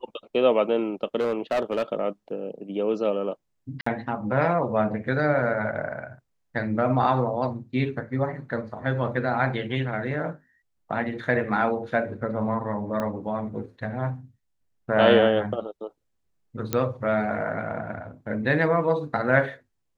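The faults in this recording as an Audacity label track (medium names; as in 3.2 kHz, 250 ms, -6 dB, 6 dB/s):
1.200000	1.830000	clipped -20 dBFS
3.810000	3.860000	dropout 54 ms
13.000000	13.000000	pop -16 dBFS
16.730000	16.730000	pop -9 dBFS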